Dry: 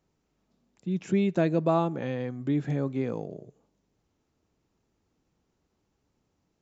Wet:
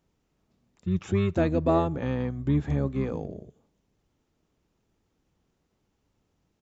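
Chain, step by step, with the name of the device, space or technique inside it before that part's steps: octave pedal (harmoniser -12 st -3 dB)

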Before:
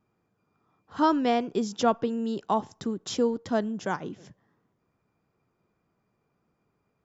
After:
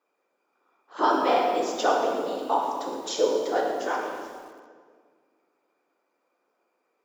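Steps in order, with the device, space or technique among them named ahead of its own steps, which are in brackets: whispering ghost (whisperiser; HPF 380 Hz 24 dB/oct; reverb RT60 1.8 s, pre-delay 3 ms, DRR -1 dB); low shelf 220 Hz +4.5 dB; lo-fi delay 0.115 s, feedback 55%, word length 7-bit, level -14.5 dB

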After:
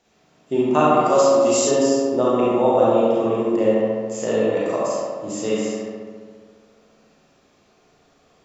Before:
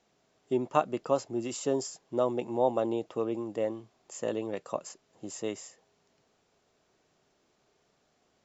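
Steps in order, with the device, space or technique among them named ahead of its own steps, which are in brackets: bathroom (reverb RT60 0.95 s, pre-delay 30 ms, DRR -5.5 dB); 1.05–1.71 tone controls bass -7 dB, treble +9 dB; darkening echo 69 ms, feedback 79%, low-pass 3800 Hz, level -4 dB; gain +5 dB

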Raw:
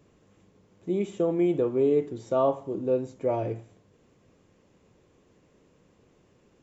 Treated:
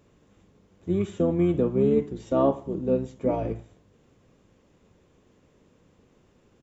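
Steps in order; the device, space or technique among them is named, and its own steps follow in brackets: octave pedal (harmoniser -12 st -4 dB)

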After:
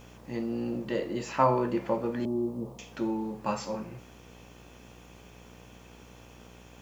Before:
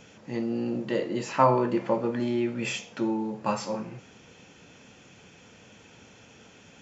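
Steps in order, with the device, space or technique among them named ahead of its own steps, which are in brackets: 2.25–2.79 steep low-pass 1100 Hz 72 dB/oct; video cassette with head-switching buzz (buzz 60 Hz, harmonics 20, -50 dBFS -4 dB/oct; white noise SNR 36 dB); gain -3 dB

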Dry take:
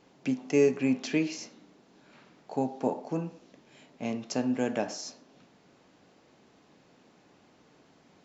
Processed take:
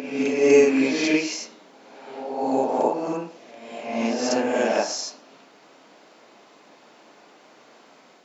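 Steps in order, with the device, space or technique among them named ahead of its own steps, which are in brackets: ghost voice (reverse; reverb RT60 1.3 s, pre-delay 29 ms, DRR -3 dB; reverse; HPF 400 Hz 12 dB/oct); gain +7 dB

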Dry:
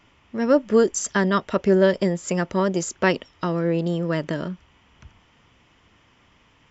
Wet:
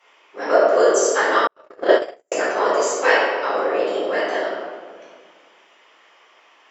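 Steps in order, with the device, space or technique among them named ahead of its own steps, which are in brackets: whispering ghost (whisperiser; HPF 470 Hz 24 dB/oct; reverb RT60 1.7 s, pre-delay 3 ms, DRR -11 dB); 1.47–2.32 gate -9 dBFS, range -53 dB; gain -3.5 dB

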